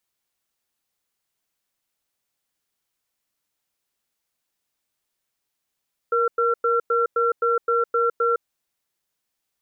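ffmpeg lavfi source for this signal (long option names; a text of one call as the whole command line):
ffmpeg -f lavfi -i "aevalsrc='0.1*(sin(2*PI*470*t)+sin(2*PI*1360*t))*clip(min(mod(t,0.26),0.16-mod(t,0.26))/0.005,0,1)':duration=2.33:sample_rate=44100" out.wav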